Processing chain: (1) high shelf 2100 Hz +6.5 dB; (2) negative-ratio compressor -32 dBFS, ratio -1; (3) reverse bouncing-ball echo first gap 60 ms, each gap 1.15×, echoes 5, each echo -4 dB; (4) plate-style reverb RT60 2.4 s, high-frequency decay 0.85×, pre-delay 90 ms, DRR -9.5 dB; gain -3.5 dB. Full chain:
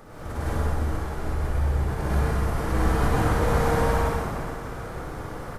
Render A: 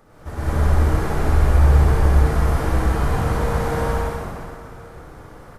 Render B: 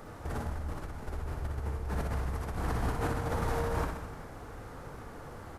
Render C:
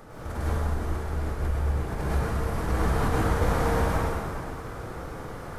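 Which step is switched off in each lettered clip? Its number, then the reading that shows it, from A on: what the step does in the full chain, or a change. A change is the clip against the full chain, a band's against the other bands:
2, momentary loudness spread change +5 LU; 4, echo-to-direct 12.0 dB to -2.0 dB; 3, echo-to-direct 12.0 dB to 9.5 dB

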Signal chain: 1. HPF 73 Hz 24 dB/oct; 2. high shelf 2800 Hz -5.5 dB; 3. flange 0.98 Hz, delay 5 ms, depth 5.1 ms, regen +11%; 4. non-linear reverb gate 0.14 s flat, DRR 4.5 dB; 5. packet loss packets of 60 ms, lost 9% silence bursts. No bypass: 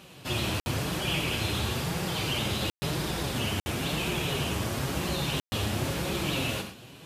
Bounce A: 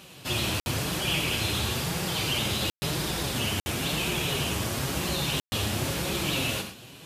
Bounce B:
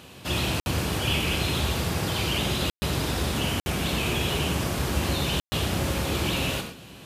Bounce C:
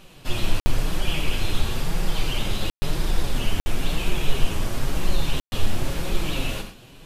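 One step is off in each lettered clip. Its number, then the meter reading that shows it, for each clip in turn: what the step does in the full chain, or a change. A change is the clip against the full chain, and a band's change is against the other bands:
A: 2, 8 kHz band +4.5 dB; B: 3, loudness change +3.5 LU; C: 1, 125 Hz band +1.5 dB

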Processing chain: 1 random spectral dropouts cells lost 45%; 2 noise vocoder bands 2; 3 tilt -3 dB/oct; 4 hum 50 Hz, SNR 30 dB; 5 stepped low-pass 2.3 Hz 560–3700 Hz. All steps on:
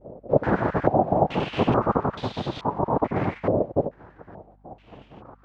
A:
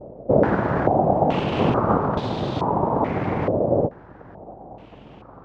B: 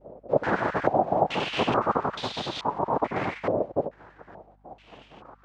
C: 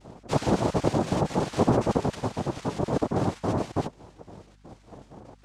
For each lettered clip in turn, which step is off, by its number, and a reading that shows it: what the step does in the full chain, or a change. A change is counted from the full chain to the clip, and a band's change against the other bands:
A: 1, crest factor change -3.0 dB; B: 3, 125 Hz band -8.0 dB; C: 5, 2 kHz band -4.5 dB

